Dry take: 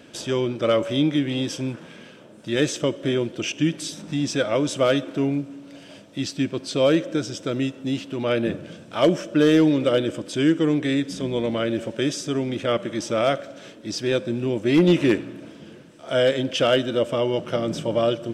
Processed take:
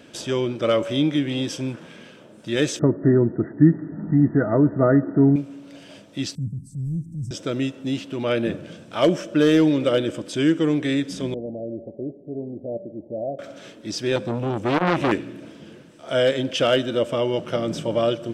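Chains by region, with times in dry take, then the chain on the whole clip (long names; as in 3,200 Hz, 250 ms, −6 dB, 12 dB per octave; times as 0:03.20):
0:02.79–0:05.36: linear-phase brick-wall low-pass 2,000 Hz + low-shelf EQ 360 Hz +11.5 dB + notch comb filter 540 Hz
0:06.35–0:07.31: elliptic band-stop filter 160–8,900 Hz, stop band 50 dB + transient designer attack −6 dB, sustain +5 dB + spectral tilt −2.5 dB per octave
0:11.34–0:13.39: Butterworth low-pass 760 Hz 72 dB per octave + tuned comb filter 83 Hz, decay 0.48 s, harmonics odd
0:14.16–0:15.12: low-shelf EQ 200 Hz +9 dB + saturating transformer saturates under 1,300 Hz
whole clip: no processing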